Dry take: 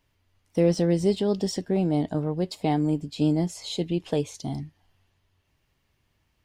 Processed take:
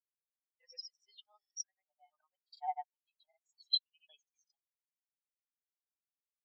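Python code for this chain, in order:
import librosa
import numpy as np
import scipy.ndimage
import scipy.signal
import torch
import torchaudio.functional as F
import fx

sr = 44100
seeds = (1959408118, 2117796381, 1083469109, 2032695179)

y = scipy.signal.sosfilt(scipy.signal.butter(4, 1100.0, 'highpass', fs=sr, output='sos'), x)
y = fx.vibrato(y, sr, rate_hz=0.92, depth_cents=35.0)
y = fx.granulator(y, sr, seeds[0], grain_ms=100.0, per_s=20.0, spray_ms=100.0, spread_st=0)
y = fx.spectral_expand(y, sr, expansion=4.0)
y = F.gain(torch.from_numpy(y), 3.5).numpy()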